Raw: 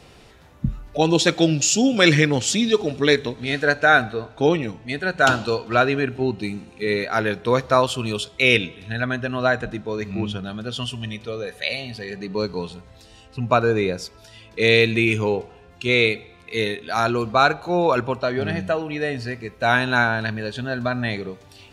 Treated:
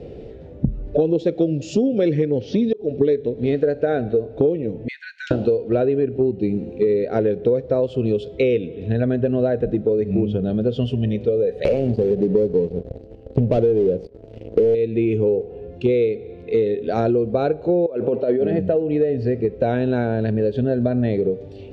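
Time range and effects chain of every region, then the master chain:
2.24–3.01 s: Chebyshev low-pass 6 kHz, order 6 + slow attack 509 ms
4.88–5.31 s: median filter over 3 samples + rippled Chebyshev high-pass 1.5 kHz, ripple 6 dB + three bands compressed up and down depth 70%
11.65–14.75 s: median filter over 25 samples + waveshaping leveller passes 3 + treble shelf 4.2 kHz +9 dB
17.86–18.59 s: band-pass 220–4500 Hz + compressor with a negative ratio -27 dBFS
whole clip: resonant low shelf 720 Hz +14 dB, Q 3; compression 10:1, threshold -12 dBFS; low-pass 3.4 kHz 12 dB/octave; trim -3.5 dB

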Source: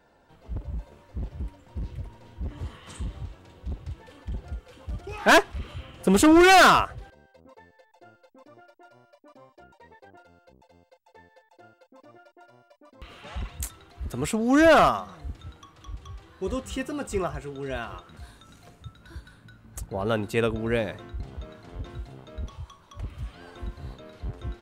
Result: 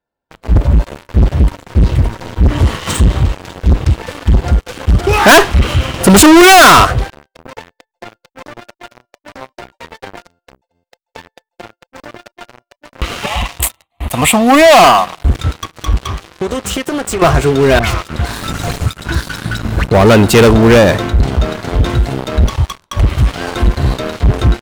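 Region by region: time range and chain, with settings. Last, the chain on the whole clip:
13.26–15.25 s: tone controls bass -12 dB, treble +1 dB + static phaser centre 1.5 kHz, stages 6
15.98–17.22 s: bass shelf 140 Hz -6.5 dB + compression 12:1, threshold -40 dBFS + loudspeaker Doppler distortion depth 0.18 ms
17.79–19.84 s: self-modulated delay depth 0.5 ms + phase dispersion highs, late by 88 ms, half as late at 2.1 kHz + three bands compressed up and down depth 100%
whole clip: gate -55 dBFS, range -19 dB; waveshaping leveller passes 5; trim +8.5 dB

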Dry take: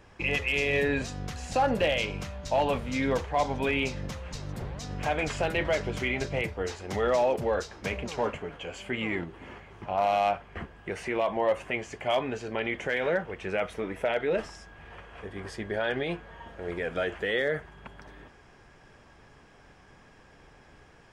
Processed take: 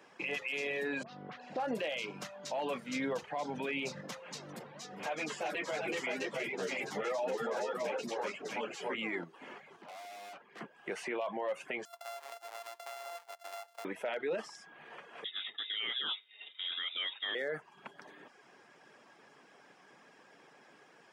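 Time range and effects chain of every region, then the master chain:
1.03–1.60 s: distance through air 340 m + phase dispersion highs, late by 42 ms, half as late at 1.4 kHz + loudspeaker Doppler distortion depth 0.13 ms
2.95–4.01 s: bass shelf 150 Hz +10.5 dB + tape noise reduction on one side only encoder only
4.59–8.95 s: multi-tap echo 374/656 ms -3.5/-4 dB + three-phase chorus
9.76–10.61 s: high-pass 160 Hz + valve stage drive 44 dB, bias 0.55
11.85–13.85 s: sorted samples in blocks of 64 samples + ladder high-pass 620 Hz, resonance 40% + compression, threshold -38 dBFS
15.24–17.35 s: frequency inversion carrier 3.7 kHz + expander -41 dBFS
whole clip: reverb removal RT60 0.51 s; Bessel high-pass 270 Hz, order 8; peak limiter -26 dBFS; trim -1.5 dB

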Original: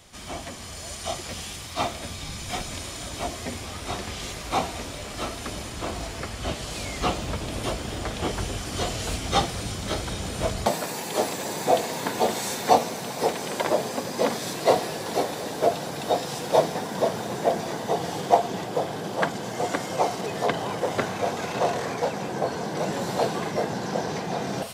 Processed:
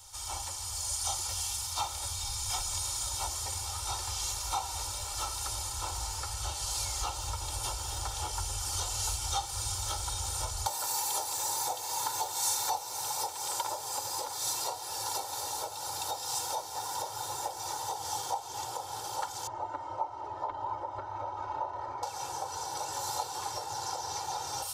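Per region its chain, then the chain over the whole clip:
19.47–22.03 s: low-pass 1.2 kHz + comb 3.2 ms, depth 62%
whole clip: comb 2.2 ms, depth 88%; compression 6:1, threshold -25 dBFS; FFT filter 100 Hz 0 dB, 190 Hz -23 dB, 280 Hz -11 dB, 450 Hz -15 dB, 800 Hz +5 dB, 1.3 kHz +2 dB, 1.9 kHz -9 dB, 5.9 kHz +10 dB; trim -6.5 dB

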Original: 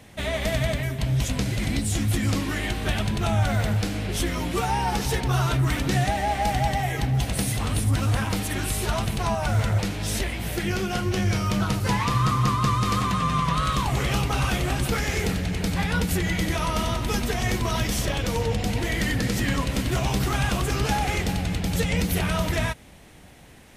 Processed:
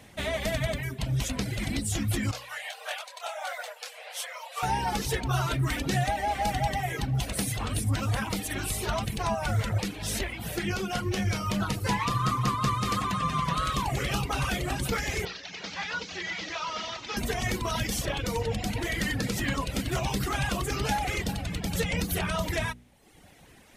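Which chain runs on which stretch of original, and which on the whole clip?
2.31–4.63 s: brick-wall FIR high-pass 470 Hz + comb 6.8 ms, depth 34% + detune thickener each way 57 cents
15.25–17.17 s: one-bit delta coder 32 kbps, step -34 dBFS + high-pass 1 kHz 6 dB/octave + treble shelf 4.1 kHz +4 dB
whole clip: reverb removal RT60 0.93 s; bass shelf 150 Hz -3 dB; de-hum 60.75 Hz, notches 8; trim -1.5 dB

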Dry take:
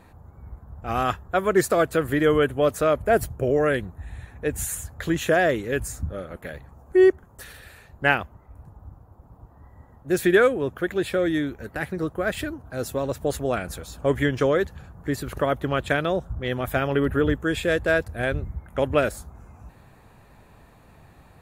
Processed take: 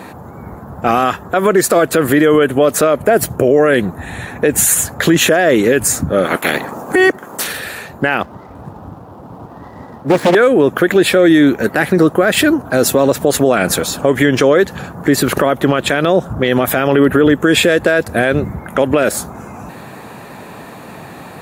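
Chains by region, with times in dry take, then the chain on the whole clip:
6.24–7.46 s: spectral peaks clipped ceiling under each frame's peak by 18 dB + companded quantiser 8-bit
8.22–10.35 s: median filter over 15 samples + loudspeaker Doppler distortion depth 0.97 ms
whole clip: compression, threshold -24 dBFS; Chebyshev high-pass 210 Hz, order 2; loudness maximiser +23.5 dB; trim -1 dB

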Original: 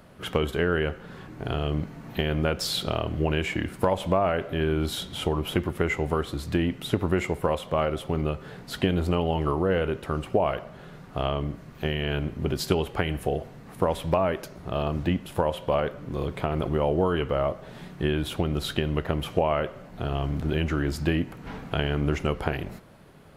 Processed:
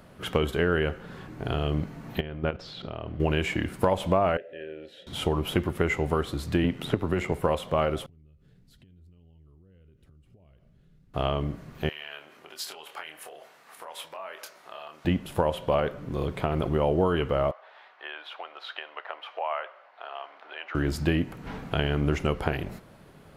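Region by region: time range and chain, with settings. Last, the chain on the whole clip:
2.20–3.20 s: level held to a coarse grid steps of 12 dB + distance through air 220 m
4.37–5.07 s: vowel filter e + short-mantissa float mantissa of 8-bit
6.64–7.32 s: treble shelf 4.2 kHz -5 dB + AM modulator 84 Hz, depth 35% + three bands compressed up and down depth 100%
8.06–11.14 s: amplifier tone stack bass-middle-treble 10-0-1 + compression, threshold -53 dBFS
11.89–15.05 s: compression 5:1, threshold -30 dBFS + high-pass 930 Hz + doubling 26 ms -7 dB
17.51–20.75 s: high-pass 740 Hz 24 dB/octave + distance through air 310 m
whole clip: none

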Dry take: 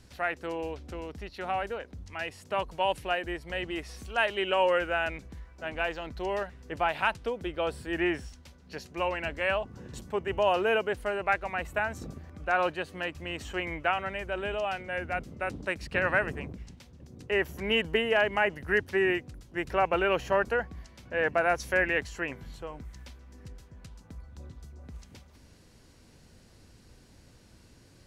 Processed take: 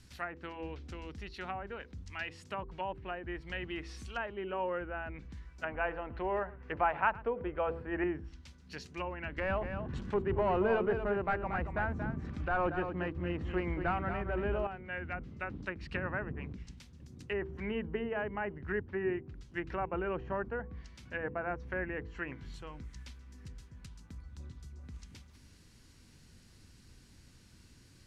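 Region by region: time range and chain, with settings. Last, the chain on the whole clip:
5.63–8.04 s: high-order bell 1.1 kHz +9 dB 3 oct + delay 110 ms -21 dB
9.38–14.67 s: waveshaping leveller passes 2 + delay 231 ms -8 dB
whole clip: low-pass that closes with the level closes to 960 Hz, closed at -26.5 dBFS; peaking EQ 610 Hz -10.5 dB 1.3 oct; de-hum 55.31 Hz, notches 9; trim -1 dB

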